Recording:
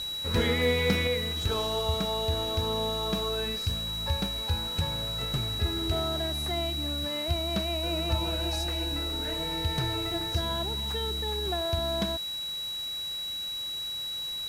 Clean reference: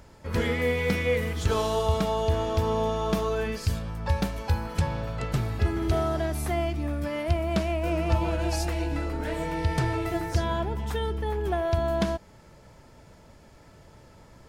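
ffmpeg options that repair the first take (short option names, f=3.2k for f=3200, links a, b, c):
-af "bandreject=f=3.9k:w=30,afwtdn=0.0045,asetnsamples=n=441:p=0,asendcmd='1.07 volume volume 5dB',volume=0dB"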